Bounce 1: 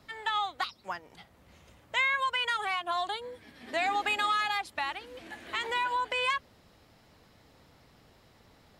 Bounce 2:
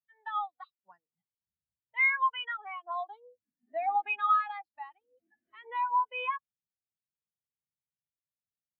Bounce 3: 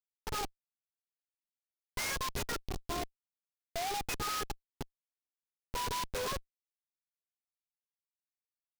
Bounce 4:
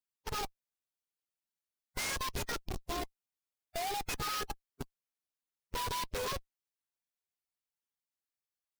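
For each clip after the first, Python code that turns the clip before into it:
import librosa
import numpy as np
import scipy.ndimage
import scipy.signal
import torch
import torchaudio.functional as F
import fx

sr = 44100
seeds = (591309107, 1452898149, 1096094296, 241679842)

y1 = fx.peak_eq(x, sr, hz=160.0, db=5.5, octaves=1.3)
y1 = fx.spectral_expand(y1, sr, expansion=2.5)
y2 = y1 + 10.0 ** (-49.0 / 20.0) * np.sin(2.0 * np.pi * 410.0 * np.arange(len(y1)) / sr)
y2 = fx.schmitt(y2, sr, flips_db=-33.0)
y2 = fx.noise_mod_delay(y2, sr, seeds[0], noise_hz=3400.0, depth_ms=0.079)
y3 = fx.spec_quant(y2, sr, step_db=15)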